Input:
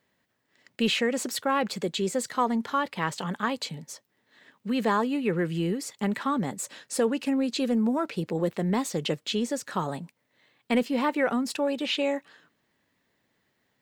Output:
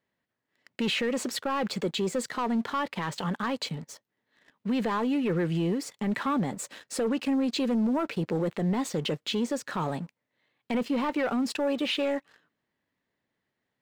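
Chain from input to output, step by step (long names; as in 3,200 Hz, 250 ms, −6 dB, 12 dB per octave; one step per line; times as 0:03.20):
high-shelf EQ 6,500 Hz −10.5 dB
leveller curve on the samples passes 2
brickwall limiter −17 dBFS, peak gain reduction 5.5 dB
level −4.5 dB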